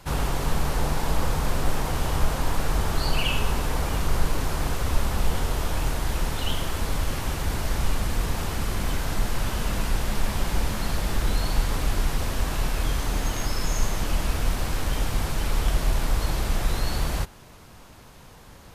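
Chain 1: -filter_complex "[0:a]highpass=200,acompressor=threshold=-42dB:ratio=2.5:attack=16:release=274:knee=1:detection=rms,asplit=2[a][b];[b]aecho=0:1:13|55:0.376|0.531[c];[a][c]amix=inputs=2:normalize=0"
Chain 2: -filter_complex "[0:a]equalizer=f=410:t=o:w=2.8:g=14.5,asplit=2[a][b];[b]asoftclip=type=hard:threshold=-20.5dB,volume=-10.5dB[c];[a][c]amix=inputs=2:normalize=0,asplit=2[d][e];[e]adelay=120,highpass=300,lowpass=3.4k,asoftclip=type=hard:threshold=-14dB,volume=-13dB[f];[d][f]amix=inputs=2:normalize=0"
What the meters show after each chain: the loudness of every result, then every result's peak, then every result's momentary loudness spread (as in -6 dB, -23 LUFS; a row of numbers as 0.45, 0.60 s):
-39.0, -20.0 LUFS; -25.5, -4.5 dBFS; 1, 3 LU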